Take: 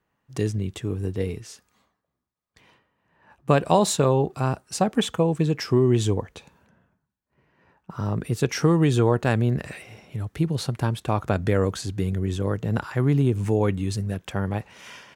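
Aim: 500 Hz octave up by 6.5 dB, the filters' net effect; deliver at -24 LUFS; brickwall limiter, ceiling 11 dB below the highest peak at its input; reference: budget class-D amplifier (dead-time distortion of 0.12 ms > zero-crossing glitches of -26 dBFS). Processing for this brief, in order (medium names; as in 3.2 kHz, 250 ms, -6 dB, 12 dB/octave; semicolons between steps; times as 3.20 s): peaking EQ 500 Hz +8 dB; peak limiter -11.5 dBFS; dead-time distortion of 0.12 ms; zero-crossing glitches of -26 dBFS; trim +0.5 dB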